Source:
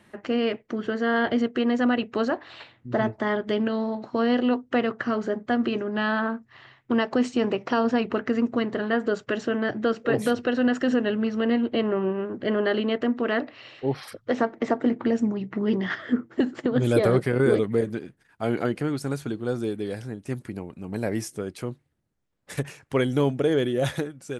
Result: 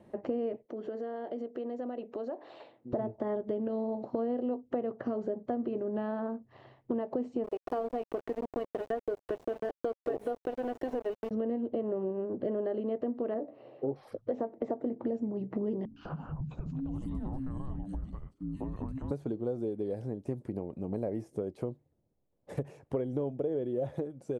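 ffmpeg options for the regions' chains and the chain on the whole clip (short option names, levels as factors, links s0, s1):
-filter_complex "[0:a]asettb=1/sr,asplit=3[s0][s1][s2];[s0]atrim=end=0.664[s3];[s1]atrim=start=0.66:end=2.93,asetpts=PTS-STARTPTS,afade=t=in:d=0.004:c=qsin,afade=t=out:st=2.266:d=0.004:c=qsin,highpass=280,acompressor=threshold=0.01:ratio=3:attack=3.2:release=140:knee=1:detection=peak[s4];[s2]atrim=start=2.926[s5];[s3][s4]acrossfade=d=0.004:c1=hsin:c2=qsin[s6];[s6][s5]acrossfade=d=0.004:c1=qsin:c2=hsin,asettb=1/sr,asplit=3[s7][s8][s9];[s7]atrim=end=7.444[s10];[s8]atrim=start=7.44:end=11.31,asetpts=PTS-STARTPTS,afade=t=in:d=0.004:c=qsin,afade=t=out:st=3.866:d=0.004:c=qsin,aemphasis=mode=production:type=riaa,aecho=1:1:2.7:0.57,atrim=end_sample=170667,aeval=exprs='val(0)*gte(abs(val(0)),0.0473)':c=same[s11];[s9]atrim=start=11.306[s12];[s10][s11]acrossfade=d=0.004:c1=hsin:c2=qsin[s13];[s13][s12]acrossfade=d=0.004:c1=qsin:c2=hsin,asettb=1/sr,asplit=3[s14][s15][s16];[s14]atrim=end=13.344[s17];[s15]atrim=start=13.34:end=13.96,asetpts=PTS-STARTPTS,afade=t=in:d=0.004:c=qsin,afade=t=out:st=0.616:d=0.004:c=qsin,bandpass=f=370:t=q:w=0.59,asplit=2[s18][s19];[s19]adelay=14,volume=0.501[s20];[s18][s20]amix=inputs=2:normalize=0,atrim=end_sample=27342[s21];[s16]atrim=start=13.956[s22];[s17][s21]acrossfade=d=0.004:c1=hsin:c2=qsin[s23];[s23][s22]acrossfade=d=0.004:c1=qsin:c2=hsin,asettb=1/sr,asplit=3[s24][s25][s26];[s24]atrim=end=15.854[s27];[s25]atrim=start=15.85:end=19.11,asetpts=PTS-STARTPTS,afade=t=in:d=0.004:c=qsin,afade=t=out:st=3.256:d=0.004:c=qsin,acrossover=split=280|2900[s28][s29][s30];[s30]adelay=110[s31];[s29]adelay=200[s32];[s28][s32][s31]amix=inputs=3:normalize=0,atrim=end_sample=143766,acompressor=threshold=0.02:ratio=4:attack=3.2:release=140:knee=1:detection=peak,afreqshift=-400[s33];[s26]atrim=start=19.106[s34];[s27][s33]acrossfade=d=0.004:c1=hsin:c2=qsin[s35];[s35][s34]acrossfade=d=0.004:c1=qsin:c2=hsin,acrossover=split=2600[s36][s37];[s37]acompressor=threshold=0.00562:ratio=4:attack=1:release=60[s38];[s36][s38]amix=inputs=2:normalize=0,firequalizer=gain_entry='entry(190,0);entry(550,6);entry(1400,-14)':delay=0.05:min_phase=1,acompressor=threshold=0.0282:ratio=5"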